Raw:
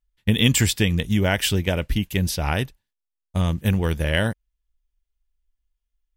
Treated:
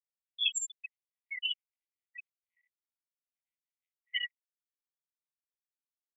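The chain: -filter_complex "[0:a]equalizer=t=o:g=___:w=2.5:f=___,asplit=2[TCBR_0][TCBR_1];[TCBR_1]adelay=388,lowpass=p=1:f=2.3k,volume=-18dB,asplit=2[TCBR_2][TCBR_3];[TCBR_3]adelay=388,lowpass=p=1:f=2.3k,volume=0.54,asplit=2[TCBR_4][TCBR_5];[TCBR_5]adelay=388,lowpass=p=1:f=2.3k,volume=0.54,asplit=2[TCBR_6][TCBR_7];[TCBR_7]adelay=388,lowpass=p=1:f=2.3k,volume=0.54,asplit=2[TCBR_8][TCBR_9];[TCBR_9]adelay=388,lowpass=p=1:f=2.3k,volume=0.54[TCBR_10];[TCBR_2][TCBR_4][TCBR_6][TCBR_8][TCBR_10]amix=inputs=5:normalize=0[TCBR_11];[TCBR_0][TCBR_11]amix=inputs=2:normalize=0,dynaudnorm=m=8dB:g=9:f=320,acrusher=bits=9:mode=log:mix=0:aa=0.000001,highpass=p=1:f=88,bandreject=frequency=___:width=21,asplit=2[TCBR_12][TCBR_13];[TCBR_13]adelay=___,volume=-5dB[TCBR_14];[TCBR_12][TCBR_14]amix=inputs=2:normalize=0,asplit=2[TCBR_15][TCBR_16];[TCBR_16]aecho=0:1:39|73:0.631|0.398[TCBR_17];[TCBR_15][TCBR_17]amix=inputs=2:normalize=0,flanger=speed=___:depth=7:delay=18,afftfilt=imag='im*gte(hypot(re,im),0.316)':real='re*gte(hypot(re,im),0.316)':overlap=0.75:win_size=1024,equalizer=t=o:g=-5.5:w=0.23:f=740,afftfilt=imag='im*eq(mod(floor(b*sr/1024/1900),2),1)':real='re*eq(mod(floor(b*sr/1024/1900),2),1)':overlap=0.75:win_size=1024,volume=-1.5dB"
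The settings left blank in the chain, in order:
-11, 240, 5.2k, 16, 0.79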